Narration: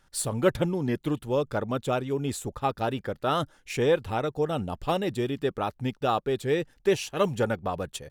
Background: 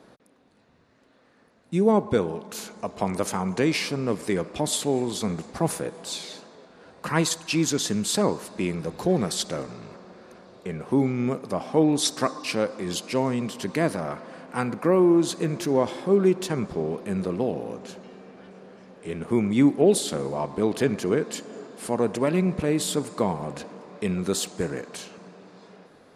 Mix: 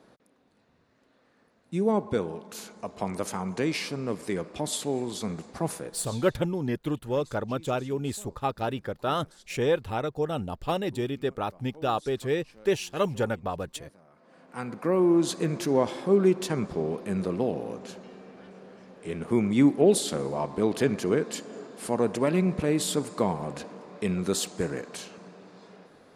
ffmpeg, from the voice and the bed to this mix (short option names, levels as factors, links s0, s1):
-filter_complex "[0:a]adelay=5800,volume=0.841[s0];[1:a]volume=11.9,afade=t=out:st=5.64:d=0.81:silence=0.0707946,afade=t=in:st=14.12:d=1.18:silence=0.0473151[s1];[s0][s1]amix=inputs=2:normalize=0"